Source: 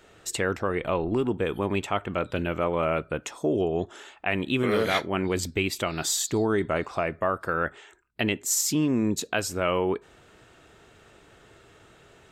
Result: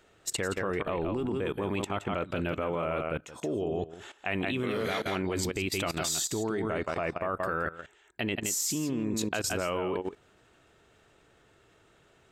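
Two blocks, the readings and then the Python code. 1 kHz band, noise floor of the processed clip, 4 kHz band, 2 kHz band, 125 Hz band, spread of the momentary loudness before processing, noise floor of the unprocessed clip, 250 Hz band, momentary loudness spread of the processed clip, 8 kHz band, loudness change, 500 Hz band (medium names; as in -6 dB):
-4.5 dB, -63 dBFS, -3.5 dB, -4.5 dB, -4.5 dB, 6 LU, -56 dBFS, -5.0 dB, 6 LU, -3.5 dB, -4.5 dB, -5.0 dB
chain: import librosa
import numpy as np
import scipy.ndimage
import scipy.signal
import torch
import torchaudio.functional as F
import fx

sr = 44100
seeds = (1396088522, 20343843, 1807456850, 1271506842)

y = x + 10.0 ** (-7.5 / 20.0) * np.pad(x, (int(170 * sr / 1000.0), 0))[:len(x)]
y = fx.level_steps(y, sr, step_db=16)
y = y * librosa.db_to_amplitude(1.5)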